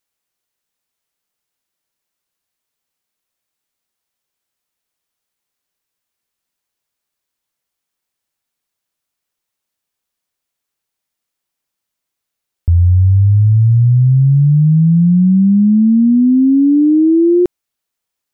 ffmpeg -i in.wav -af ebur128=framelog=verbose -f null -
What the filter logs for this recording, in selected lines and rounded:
Integrated loudness:
  I:         -10.5 LUFS
  Threshold: -20.6 LUFS
Loudness range:
  LRA:         7.3 LU
  Threshold: -31.7 LUFS
  LRA low:   -17.4 LUFS
  LRA high:  -10.1 LUFS